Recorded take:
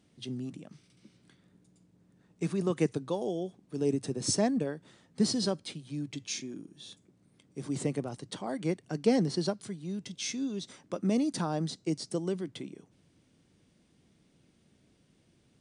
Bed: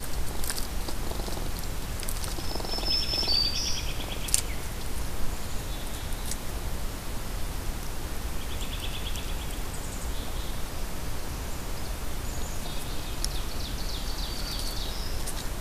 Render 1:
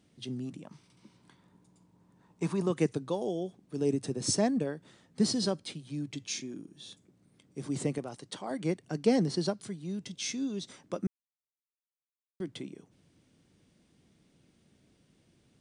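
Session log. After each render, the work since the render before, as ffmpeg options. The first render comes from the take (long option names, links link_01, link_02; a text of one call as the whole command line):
ffmpeg -i in.wav -filter_complex "[0:a]asettb=1/sr,asplit=3[link_01][link_02][link_03];[link_01]atrim=end=0.634[link_04];[link_02]atrim=start=0.63:end=2.66,asetpts=PTS-STARTPTS,afade=type=in:duration=0.004:curve=qsin,afade=type=out:start_time=2.026:duration=0.004:curve=qsin,equalizer=frequency=960:width_type=o:width=0.44:gain=14.5[link_05];[link_03]atrim=start=2.656[link_06];[link_04][link_05]acrossfade=duration=0.004:curve1=hsin:curve2=qsin[link_07];[link_07][link_06]acrossfade=duration=0.004:curve1=qsin:curve2=hsin,asettb=1/sr,asplit=3[link_08][link_09][link_10];[link_08]atrim=end=7.984[link_11];[link_09]atrim=start=7.98:end=8.51,asetpts=PTS-STARTPTS,afade=type=in:duration=0.004:curve=qsin,afade=type=out:start_time=0.526:duration=0.004:curve=qsin,lowshelf=frequency=270:gain=-8.5[link_12];[link_10]atrim=start=8.506[link_13];[link_11][link_12]acrossfade=duration=0.004:curve1=hsin:curve2=qsin[link_14];[link_14][link_13]acrossfade=duration=0.004:curve1=qsin:curve2=hsin,asplit=3[link_15][link_16][link_17];[link_15]atrim=end=11.07,asetpts=PTS-STARTPTS,afade=type=out:start_time=11.066:duration=0.004:curve=hsin[link_18];[link_16]atrim=start=11.07:end=12.4,asetpts=PTS-STARTPTS,volume=0[link_19];[link_17]atrim=start=12.4,asetpts=PTS-STARTPTS,afade=type=in:duration=0.004:curve=hsin[link_20];[link_18][link_19][link_20]concat=n=3:v=0:a=1" out.wav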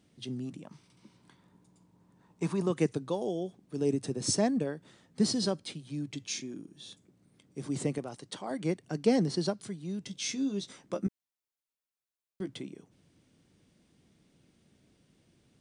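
ffmpeg -i in.wav -filter_complex "[0:a]asettb=1/sr,asplit=3[link_01][link_02][link_03];[link_01]atrim=end=10.074[link_04];[link_02]atrim=start=10.07:end=12.54,asetpts=PTS-STARTPTS,afade=type=in:duration=0.004:curve=qsin,afade=type=out:start_time=2.466:duration=0.004:curve=qsin,asplit=2[link_05][link_06];[link_06]adelay=15,volume=-7.5dB[link_07];[link_05][link_07]amix=inputs=2:normalize=0,atrim=end_sample=108927[link_08];[link_03]atrim=start=12.536[link_09];[link_04][link_08]acrossfade=duration=0.004:curve1=hsin:curve2=qsin[link_10];[link_10][link_09]acrossfade=duration=0.004:curve1=qsin:curve2=hsin" out.wav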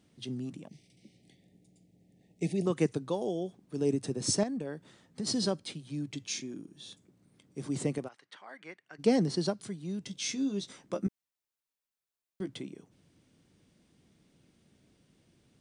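ffmpeg -i in.wav -filter_complex "[0:a]asettb=1/sr,asplit=3[link_01][link_02][link_03];[link_01]atrim=end=0.674[link_04];[link_02]atrim=start=0.67:end=2.66,asetpts=PTS-STARTPTS,afade=type=in:duration=0.004:curve=qsin,afade=type=out:start_time=1.986:duration=0.004:curve=qsin,asuperstop=centerf=1200:order=12:qfactor=1.1[link_05];[link_03]atrim=start=2.656[link_06];[link_04][link_05]acrossfade=duration=0.004:curve1=hsin:curve2=qsin[link_07];[link_07][link_06]acrossfade=duration=0.004:curve1=qsin:curve2=hsin,asettb=1/sr,asplit=3[link_08][link_09][link_10];[link_08]atrim=end=4.434[link_11];[link_09]atrim=start=4.43:end=5.27,asetpts=PTS-STARTPTS,afade=type=in:duration=0.004:curve=qsin,afade=type=out:start_time=0.836:duration=0.004:curve=qsin,acompressor=threshold=-32dB:ratio=6:attack=3.2:release=140:knee=1:detection=peak[link_12];[link_10]atrim=start=5.266[link_13];[link_11][link_12]acrossfade=duration=0.004:curve1=hsin:curve2=qsin[link_14];[link_14][link_13]acrossfade=duration=0.004:curve1=qsin:curve2=hsin,asplit=3[link_15][link_16][link_17];[link_15]afade=type=out:start_time=8.07:duration=0.02[link_18];[link_16]bandpass=frequency=1800:width_type=q:width=1.8,afade=type=in:start_time=8.07:duration=0.02,afade=type=out:start_time=8.98:duration=0.02[link_19];[link_17]afade=type=in:start_time=8.98:duration=0.02[link_20];[link_18][link_19][link_20]amix=inputs=3:normalize=0" out.wav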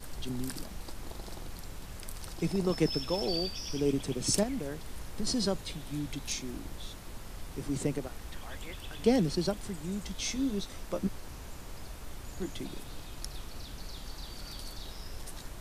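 ffmpeg -i in.wav -i bed.wav -filter_complex "[1:a]volume=-10.5dB[link_01];[0:a][link_01]amix=inputs=2:normalize=0" out.wav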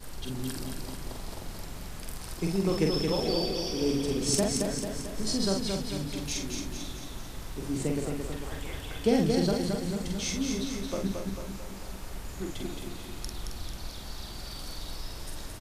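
ffmpeg -i in.wav -filter_complex "[0:a]asplit=2[link_01][link_02];[link_02]adelay=46,volume=-3.5dB[link_03];[link_01][link_03]amix=inputs=2:normalize=0,aecho=1:1:222|444|666|888|1110|1332|1554:0.596|0.328|0.18|0.0991|0.0545|0.03|0.0165" out.wav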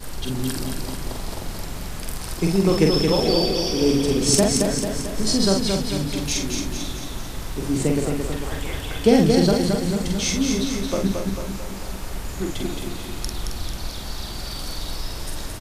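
ffmpeg -i in.wav -af "volume=9dB" out.wav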